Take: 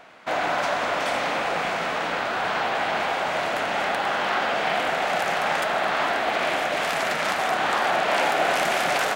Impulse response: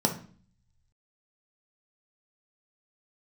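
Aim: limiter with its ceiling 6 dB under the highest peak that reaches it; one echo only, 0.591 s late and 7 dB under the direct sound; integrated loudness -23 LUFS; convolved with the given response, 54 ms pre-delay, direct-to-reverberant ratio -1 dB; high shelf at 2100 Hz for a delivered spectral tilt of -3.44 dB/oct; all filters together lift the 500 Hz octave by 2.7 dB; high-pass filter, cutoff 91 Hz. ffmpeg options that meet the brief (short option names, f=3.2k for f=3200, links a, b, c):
-filter_complex "[0:a]highpass=91,equalizer=f=500:t=o:g=4.5,highshelf=f=2.1k:g=-7.5,alimiter=limit=-15.5dB:level=0:latency=1,aecho=1:1:591:0.447,asplit=2[a][b];[1:a]atrim=start_sample=2205,adelay=54[c];[b][c]afir=irnorm=-1:irlink=0,volume=-9.5dB[d];[a][d]amix=inputs=2:normalize=0,volume=-4dB"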